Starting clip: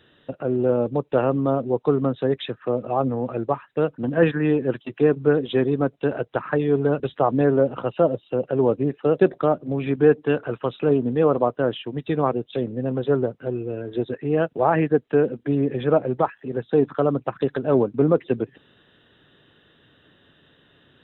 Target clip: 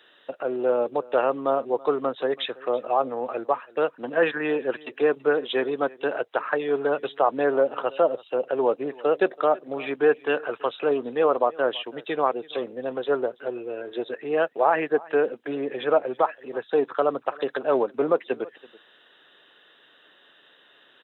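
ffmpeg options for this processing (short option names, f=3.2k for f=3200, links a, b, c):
-filter_complex "[0:a]highpass=580,asplit=2[a][b];[b]alimiter=limit=-15dB:level=0:latency=1:release=206,volume=0dB[c];[a][c]amix=inputs=2:normalize=0,aecho=1:1:330:0.0794,volume=-2.5dB"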